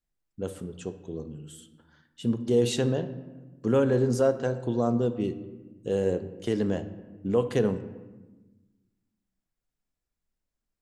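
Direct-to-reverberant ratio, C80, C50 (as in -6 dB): 10.0 dB, 14.5 dB, 12.5 dB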